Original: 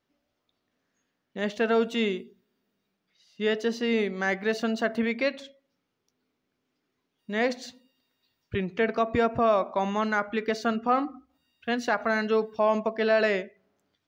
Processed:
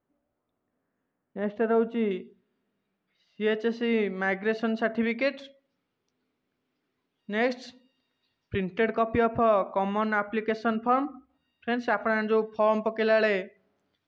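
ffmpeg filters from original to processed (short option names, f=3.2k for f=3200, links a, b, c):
-af "asetnsamples=n=441:p=0,asendcmd='2.11 lowpass f 2800;5.02 lowpass f 4300;8.89 lowpass f 2800;12.52 lowpass f 4800',lowpass=1.3k"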